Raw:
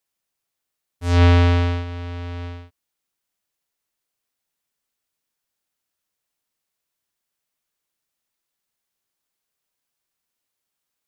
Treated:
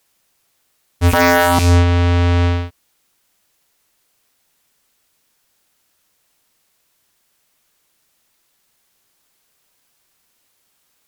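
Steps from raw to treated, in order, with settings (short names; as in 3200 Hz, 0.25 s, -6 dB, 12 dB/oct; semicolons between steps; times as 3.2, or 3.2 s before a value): rattling part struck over -18 dBFS, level -29 dBFS; 1.13–1.59 resonant low shelf 170 Hz -13.5 dB, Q 3; sine folder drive 20 dB, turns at -2.5 dBFS; gain -6.5 dB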